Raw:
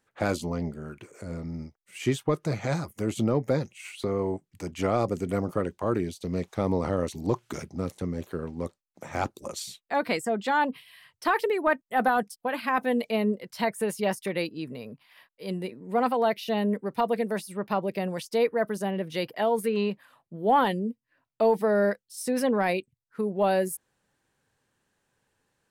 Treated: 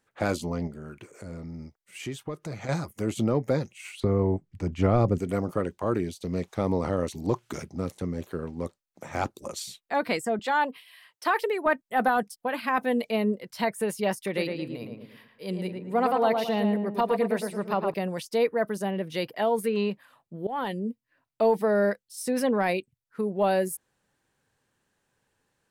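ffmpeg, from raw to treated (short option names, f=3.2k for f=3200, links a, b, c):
-filter_complex "[0:a]asettb=1/sr,asplit=3[a][b][c];[a]atrim=end=0.674[d];[b]atrim=start=0.67:end=2.69,asetpts=PTS-STARTPTS,afade=t=in:d=0.004:c=qsin,afade=t=out:st=2.016:d=0.004:c=qsin,acompressor=threshold=-37dB:ratio=2:attack=3.2:release=140:knee=1:detection=peak[e];[c]atrim=start=2.686[f];[d][e]acrossfade=d=0.004:c1=hsin:c2=qsin[g];[g][f]acrossfade=d=0.004:c1=qsin:c2=hsin,asettb=1/sr,asplit=3[h][i][j];[h]atrim=end=4.004[k];[i]atrim=start=4:end=5.18,asetpts=PTS-STARTPTS,afade=t=in:d=0.004:c=qsin,afade=t=out:st=1.176:d=0.004:c=qsin,aemphasis=mode=reproduction:type=bsi[l];[j]atrim=start=5.176[m];[k][l]acrossfade=d=0.004:c1=hsin:c2=qsin[n];[n][m]acrossfade=d=0.004:c1=qsin:c2=hsin,asettb=1/sr,asplit=3[o][p][q];[o]atrim=end=10.394[r];[p]atrim=start=10.39:end=11.66,asetpts=PTS-STARTPTS,afade=t=in:d=0.004:c=qsin,afade=t=out:st=1.266:d=0.004:c=qsin,highpass=350[s];[q]atrim=start=11.656[t];[r][s]acrossfade=d=0.004:c1=hsin:c2=qsin[u];[u][t]acrossfade=d=0.004:c1=qsin:c2=hsin,asettb=1/sr,asplit=3[v][w][x];[v]atrim=end=14.214[y];[w]atrim=start=14.21:end=17.94,asetpts=PTS-STARTPTS,afade=t=in:d=0.004:c=qsin,afade=t=out:st=3.726:d=0.004:c=qsin,asplit=2[z][aa];[aa]adelay=111,lowpass=f=2k:p=1,volume=-4dB,asplit=2[ab][ac];[ac]adelay=111,lowpass=f=2k:p=1,volume=0.4,asplit=2[ad][ae];[ae]adelay=111,lowpass=f=2k:p=1,volume=0.4,asplit=2[af][ag];[ag]adelay=111,lowpass=f=2k:p=1,volume=0.4,asplit=2[ah][ai];[ai]adelay=111,lowpass=f=2k:p=1,volume=0.4[aj];[z][ab][ad][af][ah][aj]amix=inputs=6:normalize=0,atrim=end_sample=164493[ak];[x]atrim=start=17.936[al];[y][ak]acrossfade=d=0.004:c1=hsin:c2=qsin[am];[am][al]acrossfade=d=0.004:c1=qsin:c2=hsin,asplit=2[an][ao];[an]atrim=end=20.47,asetpts=PTS-STARTPTS,afade=t=out:st=20.466:d=0.004:c=hsin:silence=0.112202[ap];[ao]atrim=start=20.47,asetpts=PTS-STARTPTS,afade=t=in:d=0.43:silence=0.112202[aq];[ap][aq]concat=n=2:v=0:a=1"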